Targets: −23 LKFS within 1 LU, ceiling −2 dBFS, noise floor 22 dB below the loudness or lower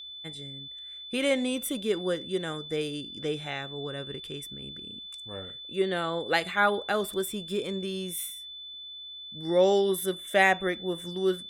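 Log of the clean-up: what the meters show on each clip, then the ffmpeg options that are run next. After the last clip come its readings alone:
interfering tone 3,500 Hz; level of the tone −40 dBFS; integrated loudness −29.5 LKFS; sample peak −9.5 dBFS; target loudness −23.0 LKFS
→ -af "bandreject=frequency=3500:width=30"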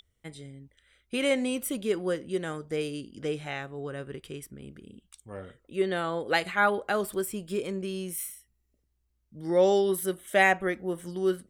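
interfering tone none found; integrated loudness −29.0 LKFS; sample peak −10.0 dBFS; target loudness −23.0 LKFS
→ -af "volume=6dB"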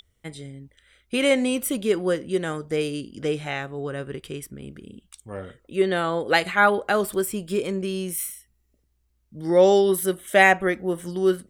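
integrated loudness −23.0 LKFS; sample peak −4.0 dBFS; background noise floor −69 dBFS

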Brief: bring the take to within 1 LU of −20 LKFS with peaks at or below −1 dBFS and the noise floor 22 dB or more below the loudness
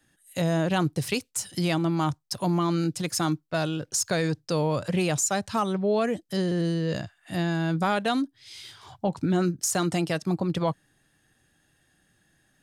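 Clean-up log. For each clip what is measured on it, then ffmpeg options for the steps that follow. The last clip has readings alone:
integrated loudness −27.0 LKFS; sample peak −13.0 dBFS; target loudness −20.0 LKFS
→ -af "volume=7dB"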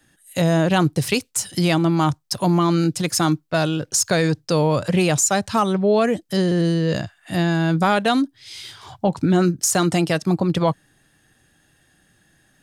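integrated loudness −20.0 LKFS; sample peak −6.0 dBFS; background noise floor −62 dBFS

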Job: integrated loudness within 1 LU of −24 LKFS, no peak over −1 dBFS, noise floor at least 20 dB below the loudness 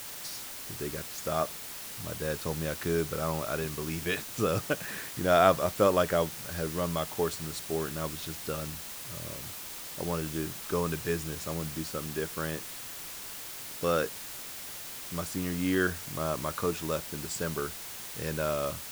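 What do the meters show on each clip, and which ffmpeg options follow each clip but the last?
background noise floor −42 dBFS; target noise floor −52 dBFS; integrated loudness −32.0 LKFS; sample peak −6.5 dBFS; target loudness −24.0 LKFS
→ -af "afftdn=noise_reduction=10:noise_floor=-42"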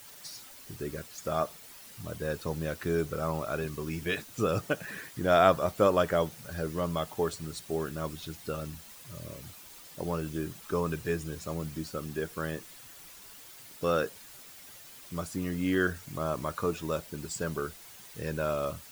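background noise floor −50 dBFS; target noise floor −52 dBFS
→ -af "afftdn=noise_reduction=6:noise_floor=-50"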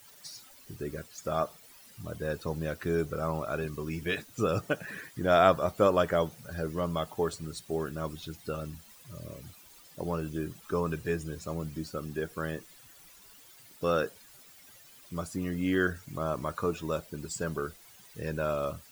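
background noise floor −55 dBFS; integrated loudness −32.0 LKFS; sample peak −6.5 dBFS; target loudness −24.0 LKFS
→ -af "volume=8dB,alimiter=limit=-1dB:level=0:latency=1"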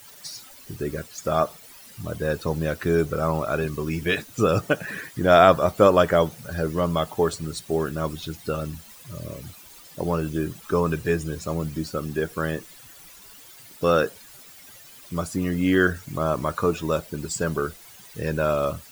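integrated loudness −24.0 LKFS; sample peak −1.0 dBFS; background noise floor −47 dBFS

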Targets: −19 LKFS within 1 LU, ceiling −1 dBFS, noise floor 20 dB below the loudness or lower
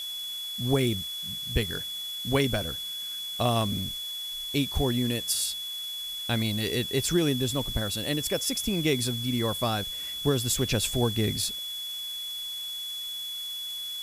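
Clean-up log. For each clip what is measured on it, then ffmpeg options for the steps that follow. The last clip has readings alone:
interfering tone 3,400 Hz; level of the tone −33 dBFS; background noise floor −36 dBFS; target noise floor −49 dBFS; integrated loudness −28.5 LKFS; sample peak −10.5 dBFS; target loudness −19.0 LKFS
→ -af "bandreject=frequency=3400:width=30"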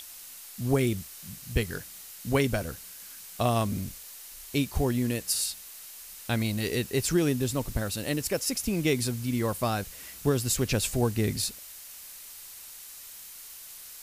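interfering tone none found; background noise floor −46 dBFS; target noise floor −49 dBFS
→ -af "afftdn=noise_reduction=6:noise_floor=-46"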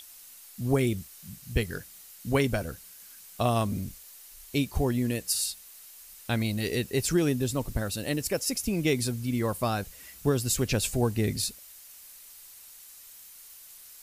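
background noise floor −50 dBFS; integrated loudness −28.5 LKFS; sample peak −11.0 dBFS; target loudness −19.0 LKFS
→ -af "volume=9.5dB"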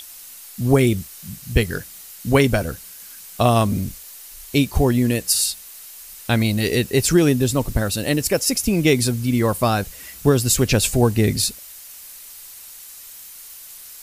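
integrated loudness −19.0 LKFS; sample peak −1.5 dBFS; background noise floor −40 dBFS

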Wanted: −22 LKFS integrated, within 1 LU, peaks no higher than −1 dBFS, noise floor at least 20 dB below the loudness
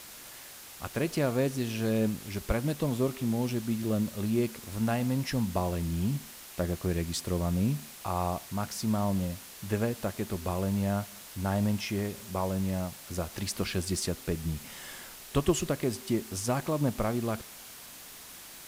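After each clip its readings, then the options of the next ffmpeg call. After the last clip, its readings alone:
background noise floor −48 dBFS; target noise floor −52 dBFS; integrated loudness −31.5 LKFS; sample peak −13.5 dBFS; target loudness −22.0 LKFS
→ -af "afftdn=noise_reduction=6:noise_floor=-48"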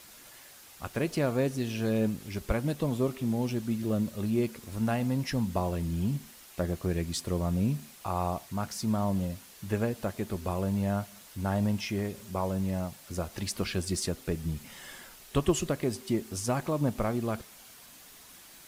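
background noise floor −52 dBFS; integrated loudness −31.5 LKFS; sample peak −14.0 dBFS; target loudness −22.0 LKFS
→ -af "volume=9.5dB"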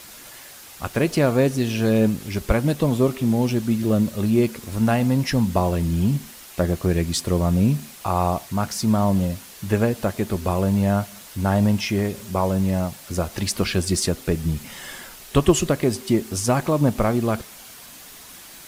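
integrated loudness −22.0 LKFS; sample peak −4.5 dBFS; background noise floor −43 dBFS

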